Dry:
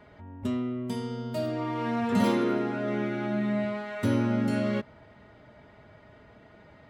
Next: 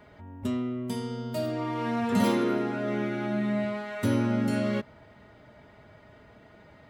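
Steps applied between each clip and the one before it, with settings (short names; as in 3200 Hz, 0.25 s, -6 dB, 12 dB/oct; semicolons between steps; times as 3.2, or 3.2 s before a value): high shelf 7400 Hz +7 dB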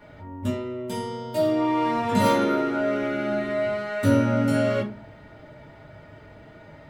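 reverb RT60 0.30 s, pre-delay 3 ms, DRR -4 dB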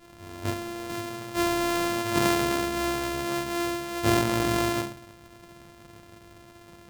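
sample sorter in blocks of 128 samples; gain -3.5 dB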